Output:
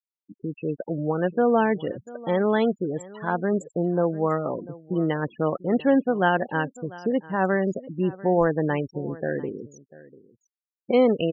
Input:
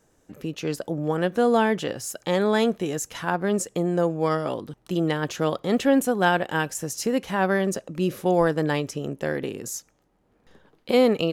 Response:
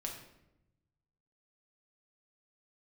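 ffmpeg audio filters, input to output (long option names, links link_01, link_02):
-af "highshelf=frequency=4700:gain=-11.5,afftfilt=real='re*gte(hypot(re,im),0.0501)':imag='im*gte(hypot(re,im),0.0501)':win_size=1024:overlap=0.75,aecho=1:1:694:0.1"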